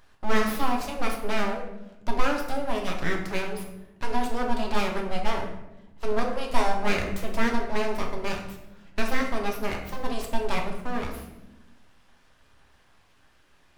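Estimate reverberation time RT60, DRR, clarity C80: 1.0 s, 0.5 dB, 9.0 dB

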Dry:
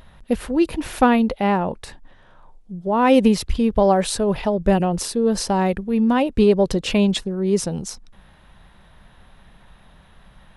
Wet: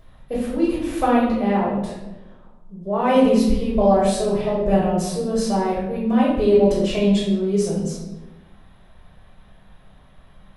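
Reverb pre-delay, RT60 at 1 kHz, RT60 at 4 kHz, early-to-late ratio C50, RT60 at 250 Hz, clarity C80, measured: 3 ms, 0.95 s, 0.65 s, 1.5 dB, 1.6 s, 5.0 dB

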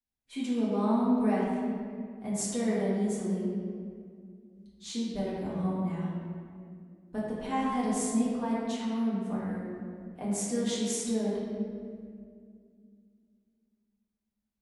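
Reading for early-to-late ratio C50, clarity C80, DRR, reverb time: -2.0 dB, 0.0 dB, -8.5 dB, 2.2 s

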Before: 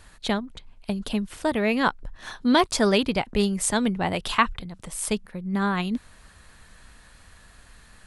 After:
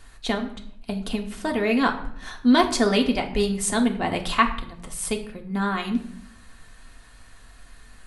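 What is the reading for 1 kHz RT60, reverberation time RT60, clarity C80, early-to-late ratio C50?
0.60 s, 0.65 s, 14.0 dB, 11.0 dB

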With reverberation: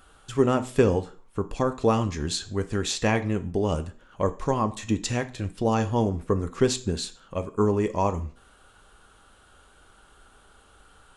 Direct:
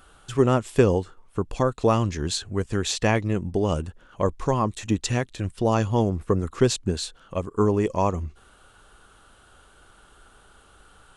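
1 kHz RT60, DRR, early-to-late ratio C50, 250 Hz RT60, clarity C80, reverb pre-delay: 0.40 s, 8.0 dB, 16.0 dB, 0.45 s, 20.5 dB, 3 ms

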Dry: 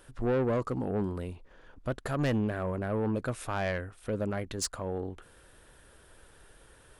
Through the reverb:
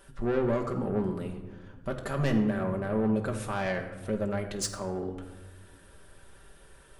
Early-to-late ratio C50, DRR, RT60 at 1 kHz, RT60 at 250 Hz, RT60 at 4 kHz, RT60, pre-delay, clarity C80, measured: 8.5 dB, 2.0 dB, 1.1 s, 2.0 s, 0.65 s, 1.3 s, 5 ms, 10.5 dB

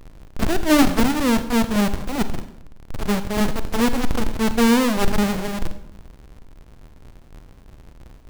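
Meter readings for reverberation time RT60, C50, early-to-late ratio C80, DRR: 0.75 s, 12.0 dB, 14.5 dB, 10.5 dB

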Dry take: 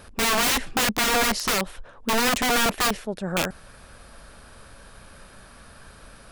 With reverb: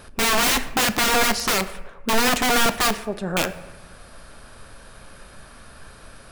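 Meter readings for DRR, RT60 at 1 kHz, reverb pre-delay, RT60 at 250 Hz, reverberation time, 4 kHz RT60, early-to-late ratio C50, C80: 10.5 dB, 0.95 s, 3 ms, 1.4 s, 1.0 s, 0.60 s, 14.5 dB, 16.0 dB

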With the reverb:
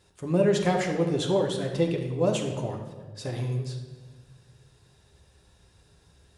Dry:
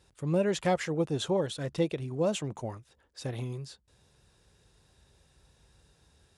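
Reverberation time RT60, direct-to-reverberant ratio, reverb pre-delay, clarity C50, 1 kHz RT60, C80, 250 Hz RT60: 1.4 s, 1.5 dB, 3 ms, 5.0 dB, 1.2 s, 8.0 dB, 1.9 s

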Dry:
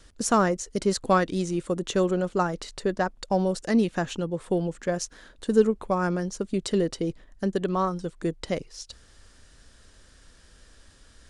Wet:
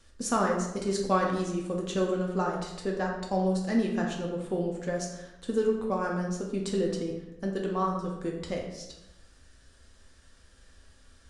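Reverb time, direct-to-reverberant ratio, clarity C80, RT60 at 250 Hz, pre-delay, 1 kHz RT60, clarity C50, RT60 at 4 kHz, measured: 1.0 s, -1.5 dB, 6.5 dB, 1.1 s, 3 ms, 0.95 s, 4.0 dB, 0.70 s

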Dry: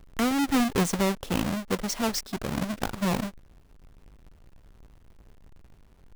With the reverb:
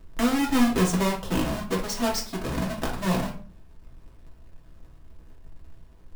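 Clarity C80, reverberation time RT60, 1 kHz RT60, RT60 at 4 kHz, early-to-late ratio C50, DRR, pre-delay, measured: 13.5 dB, 0.45 s, 0.40 s, 0.30 s, 9.0 dB, -3.5 dB, 3 ms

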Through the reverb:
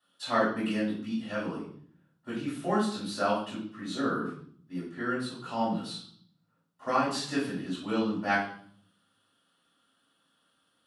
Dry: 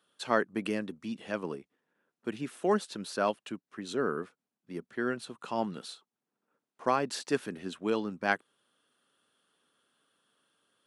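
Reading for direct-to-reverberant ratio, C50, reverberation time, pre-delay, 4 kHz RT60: -11.0 dB, 3.5 dB, 0.55 s, 3 ms, 0.60 s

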